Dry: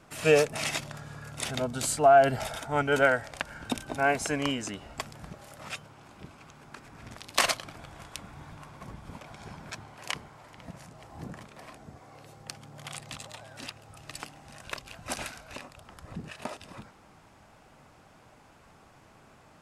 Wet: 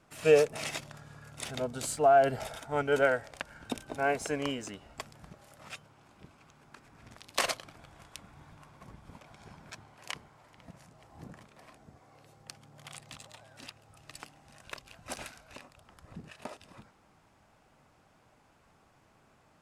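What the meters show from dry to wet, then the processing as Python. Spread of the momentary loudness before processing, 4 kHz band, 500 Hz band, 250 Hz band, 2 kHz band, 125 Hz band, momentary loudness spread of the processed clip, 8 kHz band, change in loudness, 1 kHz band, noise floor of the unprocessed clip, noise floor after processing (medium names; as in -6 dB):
23 LU, -6.0 dB, -2.0 dB, -4.5 dB, -5.5 dB, -6.0 dB, 25 LU, -6.0 dB, -2.0 dB, -4.0 dB, -57 dBFS, -65 dBFS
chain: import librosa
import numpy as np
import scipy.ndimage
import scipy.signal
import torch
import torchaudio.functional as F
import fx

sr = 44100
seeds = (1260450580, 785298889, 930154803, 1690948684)

p1 = fx.dynamic_eq(x, sr, hz=460.0, q=1.9, threshold_db=-43.0, ratio=4.0, max_db=6)
p2 = np.sign(p1) * np.maximum(np.abs(p1) - 10.0 ** (-40.5 / 20.0), 0.0)
p3 = p1 + (p2 * librosa.db_to_amplitude(-9.0))
y = p3 * librosa.db_to_amplitude(-8.0)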